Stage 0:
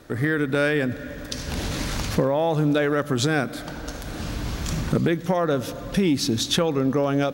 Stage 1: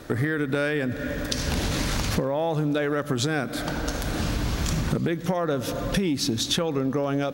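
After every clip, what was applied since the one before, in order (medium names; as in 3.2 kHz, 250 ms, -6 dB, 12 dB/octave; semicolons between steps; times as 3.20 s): compression, threshold -28 dBFS, peak gain reduction 12 dB; trim +6 dB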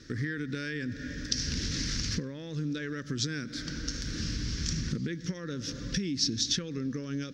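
FFT filter 270 Hz 0 dB, 500 Hz -9 dB, 730 Hz -28 dB, 1.7 kHz +1 dB, 2.5 kHz -3 dB, 3.8 kHz +1 dB, 5.5 kHz +11 dB, 8.9 kHz -12 dB, 13 kHz -24 dB; trim -7 dB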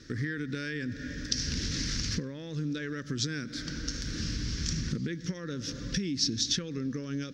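no audible change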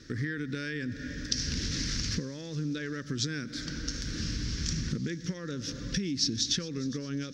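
feedback echo behind a high-pass 409 ms, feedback 54%, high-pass 4.5 kHz, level -15.5 dB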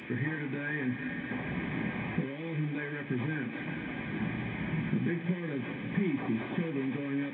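one-bit delta coder 16 kbps, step -39 dBFS; comb of notches 1.4 kHz; reverberation RT60 0.25 s, pre-delay 3 ms, DRR 3 dB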